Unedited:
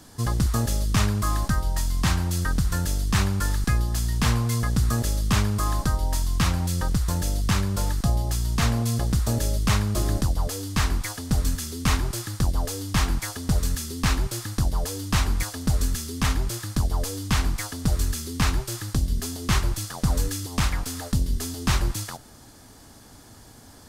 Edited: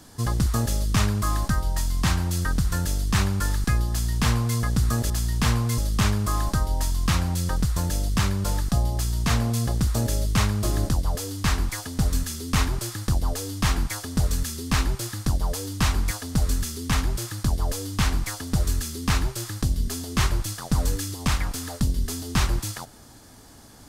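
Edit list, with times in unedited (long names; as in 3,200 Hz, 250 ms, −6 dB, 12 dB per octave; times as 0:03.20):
0:03.90–0:04.58: duplicate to 0:05.10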